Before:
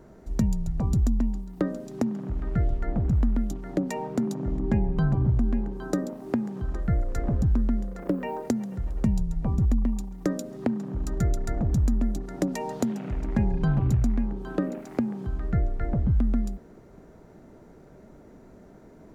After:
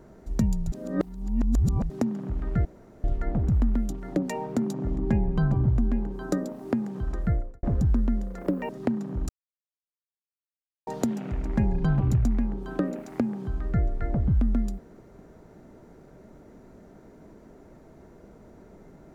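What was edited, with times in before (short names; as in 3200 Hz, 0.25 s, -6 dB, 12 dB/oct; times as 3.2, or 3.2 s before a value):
0.72–1.9 reverse
2.65 insert room tone 0.39 s
6.87–7.24 studio fade out
8.3–10.48 cut
11.08–12.66 mute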